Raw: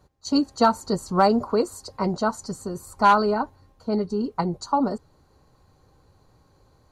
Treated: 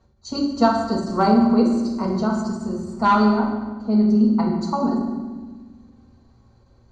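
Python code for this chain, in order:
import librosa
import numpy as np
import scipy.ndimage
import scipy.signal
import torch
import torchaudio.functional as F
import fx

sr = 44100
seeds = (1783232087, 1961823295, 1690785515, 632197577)

y = scipy.signal.sosfilt(scipy.signal.butter(4, 6800.0, 'lowpass', fs=sr, output='sos'), x)
y = fx.low_shelf(y, sr, hz=170.0, db=5.5)
y = fx.rev_fdn(y, sr, rt60_s=1.3, lf_ratio=1.55, hf_ratio=0.8, size_ms=26.0, drr_db=-1.5)
y = fx.end_taper(y, sr, db_per_s=130.0)
y = y * 10.0 ** (-4.0 / 20.0)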